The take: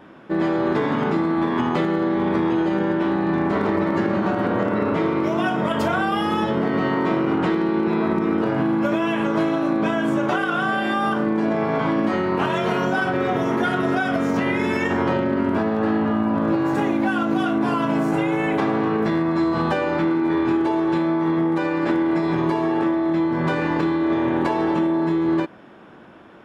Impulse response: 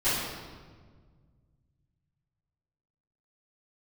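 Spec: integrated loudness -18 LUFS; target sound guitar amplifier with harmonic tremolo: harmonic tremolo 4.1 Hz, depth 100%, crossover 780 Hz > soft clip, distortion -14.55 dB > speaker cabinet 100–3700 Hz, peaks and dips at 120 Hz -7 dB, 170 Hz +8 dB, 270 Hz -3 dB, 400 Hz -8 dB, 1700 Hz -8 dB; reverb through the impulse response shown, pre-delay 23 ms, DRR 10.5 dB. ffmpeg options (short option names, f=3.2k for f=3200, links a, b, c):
-filter_complex "[0:a]asplit=2[a][b];[1:a]atrim=start_sample=2205,adelay=23[c];[b][c]afir=irnorm=-1:irlink=0,volume=-23.5dB[d];[a][d]amix=inputs=2:normalize=0,acrossover=split=780[e][f];[e]aeval=exprs='val(0)*(1-1/2+1/2*cos(2*PI*4.1*n/s))':c=same[g];[f]aeval=exprs='val(0)*(1-1/2-1/2*cos(2*PI*4.1*n/s))':c=same[h];[g][h]amix=inputs=2:normalize=0,asoftclip=threshold=-19dB,highpass=100,equalizer=f=120:t=q:w=4:g=-7,equalizer=f=170:t=q:w=4:g=8,equalizer=f=270:t=q:w=4:g=-3,equalizer=f=400:t=q:w=4:g=-8,equalizer=f=1.7k:t=q:w=4:g=-8,lowpass=f=3.7k:w=0.5412,lowpass=f=3.7k:w=1.3066,volume=10.5dB"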